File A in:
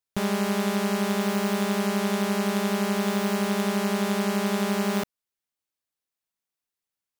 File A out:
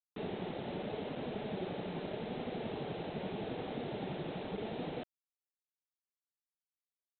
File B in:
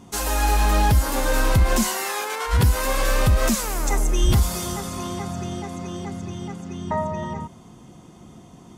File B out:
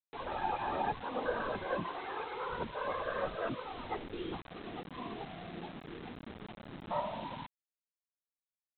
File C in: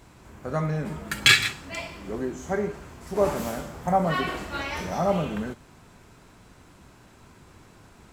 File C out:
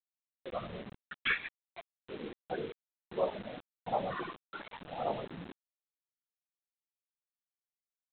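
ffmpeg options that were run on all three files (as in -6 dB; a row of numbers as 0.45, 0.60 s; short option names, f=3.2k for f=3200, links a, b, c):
-filter_complex "[0:a]highpass=f=140:p=1,afftfilt=real='re*gte(hypot(re,im),0.1)':imag='im*gte(hypot(re,im),0.1)':win_size=1024:overlap=0.75,lowpass=1.9k,acrossover=split=260[a][b];[a]acompressor=threshold=-40dB:ratio=8[c];[c][b]amix=inputs=2:normalize=0,afftfilt=real='hypot(re,im)*cos(2*PI*random(0))':imag='hypot(re,im)*sin(2*PI*random(1))':win_size=512:overlap=0.75,flanger=delay=3.9:depth=1.9:regen=69:speed=0.81:shape=sinusoidal,aresample=8000,acrusher=bits=7:mix=0:aa=0.000001,aresample=44100,volume=1dB"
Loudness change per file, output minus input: -15.5, -16.0, -13.0 LU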